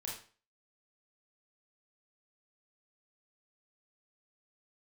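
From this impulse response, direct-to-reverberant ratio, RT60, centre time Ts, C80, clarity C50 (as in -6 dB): -3.5 dB, 0.40 s, 39 ms, 9.5 dB, 3.5 dB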